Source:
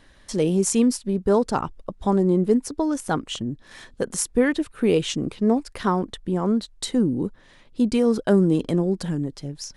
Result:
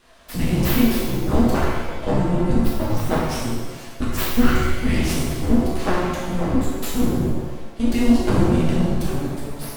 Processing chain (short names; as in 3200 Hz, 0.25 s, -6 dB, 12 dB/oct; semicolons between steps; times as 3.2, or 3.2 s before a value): frequency shift -360 Hz; full-wave rectifier; shimmer reverb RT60 1.2 s, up +7 st, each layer -8 dB, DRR -5.5 dB